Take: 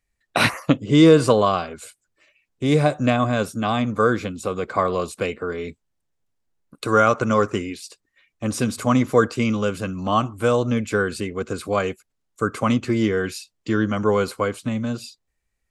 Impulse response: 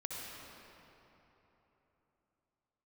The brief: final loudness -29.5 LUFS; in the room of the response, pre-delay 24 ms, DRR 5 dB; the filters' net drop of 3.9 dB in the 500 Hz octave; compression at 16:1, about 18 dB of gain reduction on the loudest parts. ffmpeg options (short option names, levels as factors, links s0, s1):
-filter_complex "[0:a]equalizer=f=500:t=o:g=-4.5,acompressor=threshold=0.0398:ratio=16,asplit=2[s0][s1];[1:a]atrim=start_sample=2205,adelay=24[s2];[s1][s2]afir=irnorm=-1:irlink=0,volume=0.501[s3];[s0][s3]amix=inputs=2:normalize=0,volume=1.5"